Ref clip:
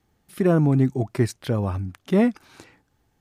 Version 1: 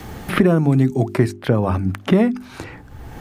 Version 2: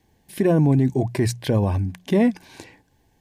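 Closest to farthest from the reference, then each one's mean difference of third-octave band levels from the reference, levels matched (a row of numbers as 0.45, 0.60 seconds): 2, 1; 3.0, 5.0 decibels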